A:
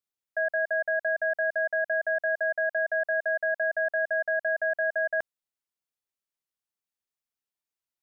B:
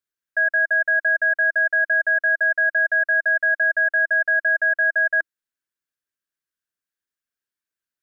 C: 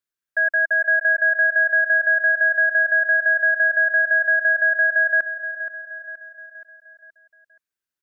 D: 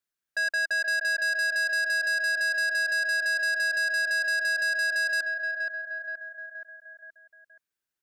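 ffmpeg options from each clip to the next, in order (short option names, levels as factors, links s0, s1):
-af "equalizer=f=315:t=o:w=0.33:g=4,equalizer=f=800:t=o:w=0.33:g=-10,equalizer=f=1600:t=o:w=0.33:g=12"
-af "aecho=1:1:474|948|1422|1896|2370:0.251|0.126|0.0628|0.0314|0.0157"
-af "asoftclip=type=tanh:threshold=0.0596"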